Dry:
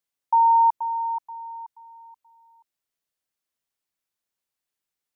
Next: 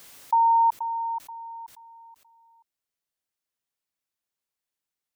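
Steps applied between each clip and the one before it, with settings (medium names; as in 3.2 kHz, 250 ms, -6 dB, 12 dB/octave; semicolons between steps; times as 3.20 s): swell ahead of each attack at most 51 dB/s; trim -2.5 dB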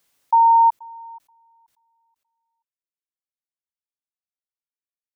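upward expansion 2.5:1, over -35 dBFS; trim +6.5 dB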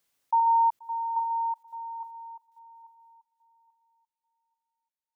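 chunks repeated in reverse 398 ms, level -11 dB; thinning echo 837 ms, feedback 26%, high-pass 810 Hz, level -4.5 dB; trim -8 dB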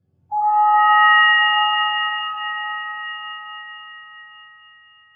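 spectrum inverted on a logarithmic axis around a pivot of 880 Hz; comb of notches 950 Hz; pitch-shifted reverb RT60 3.4 s, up +7 st, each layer -2 dB, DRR -6 dB; trim +3 dB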